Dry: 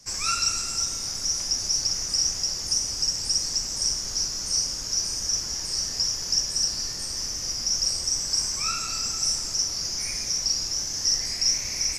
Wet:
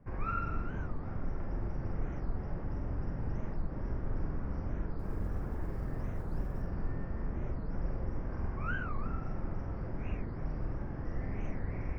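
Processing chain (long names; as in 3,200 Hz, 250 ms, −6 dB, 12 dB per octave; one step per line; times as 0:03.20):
inverse Chebyshev low-pass filter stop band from 7,200 Hz, stop band 70 dB
hum removal 79.67 Hz, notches 40
0:04.99–0:06.62: noise that follows the level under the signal 26 dB
tilt shelving filter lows +7 dB, about 650 Hz
flutter between parallel walls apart 7.9 metres, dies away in 0.44 s
wow of a warped record 45 rpm, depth 250 cents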